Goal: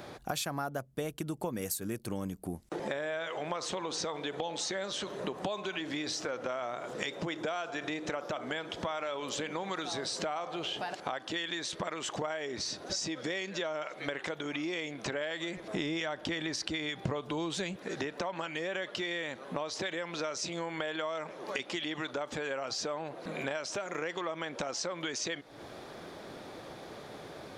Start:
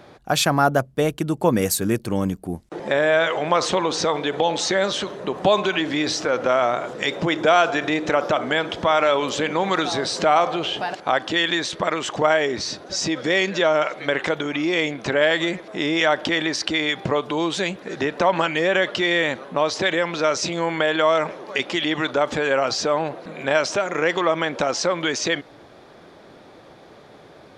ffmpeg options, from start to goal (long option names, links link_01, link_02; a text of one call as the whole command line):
ffmpeg -i in.wav -filter_complex "[0:a]crystalizer=i=1:c=0,acompressor=threshold=-34dB:ratio=6,asettb=1/sr,asplit=3[link_01][link_02][link_03];[link_01]atrim=end=15.574[link_04];[link_02]atrim=start=15.57:end=17.77,asetpts=PTS-STARTPTS,afade=type=in:duration=0.004:curve=qsin,afade=type=out:start_time=2.196:duration=0.004:curve=qsin,lowshelf=frequency=150:gain=12[link_05];[link_03]atrim=start=17.766[link_06];[link_04][link_05]acrossfade=duration=0.004:curve1=hsin:curve2=qsin[link_07];[link_07][link_06]acrossfade=duration=0.004:curve1=qsin:curve2=hsin" out.wav